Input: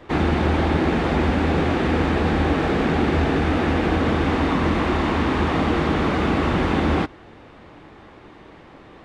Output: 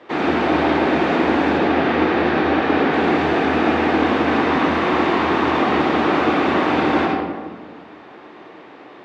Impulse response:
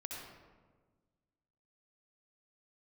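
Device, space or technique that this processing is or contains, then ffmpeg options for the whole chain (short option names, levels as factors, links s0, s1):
supermarket ceiling speaker: -filter_complex "[0:a]asettb=1/sr,asplit=3[s0][s1][s2];[s0]atrim=end=1.574[s3];[s1]atrim=start=1.57:end=2.93,asetpts=PTS-STARTPTS,afade=t=in:d=0.004:c=qsin,afade=t=out:st=1.356:d=0.004:c=qsin,lowpass=5300[s4];[s2]atrim=start=2.926[s5];[s3][s4]acrossfade=d=0.004:c1=hsin:c2=qsin[s6];[s6][s5]acrossfade=d=0.004:c1=qsin:c2=hsin,highpass=280,lowpass=5600[s7];[1:a]atrim=start_sample=2205[s8];[s7][s8]afir=irnorm=-1:irlink=0,volume=2.11"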